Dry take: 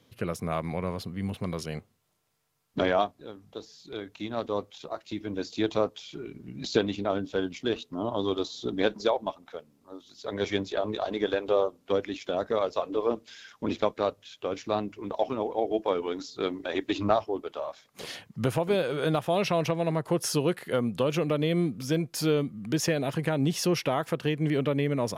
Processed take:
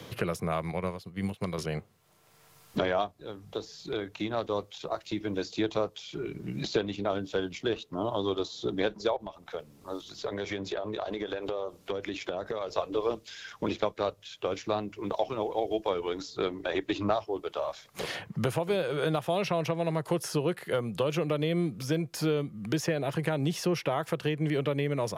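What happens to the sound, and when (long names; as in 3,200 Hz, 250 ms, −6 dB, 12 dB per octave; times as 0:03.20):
0:00.71–0:01.58: expander for the loud parts 2.5 to 1, over −41 dBFS
0:09.16–0:12.78: downward compressor, threshold −34 dBFS
whole clip: parametric band 250 Hz −11.5 dB 0.24 octaves; multiband upward and downward compressor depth 70%; level −1.5 dB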